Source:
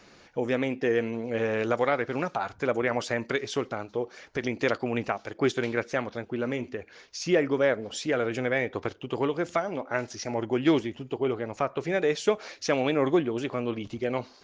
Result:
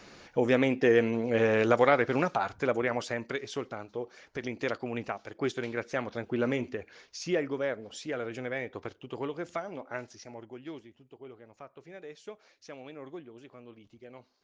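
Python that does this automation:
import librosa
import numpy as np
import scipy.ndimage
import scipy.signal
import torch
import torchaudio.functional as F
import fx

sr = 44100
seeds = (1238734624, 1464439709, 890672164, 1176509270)

y = fx.gain(x, sr, db=fx.line((2.14, 2.5), (3.33, -6.0), (5.74, -6.0), (6.42, 1.5), (7.63, -8.0), (9.93, -8.0), (10.66, -20.0)))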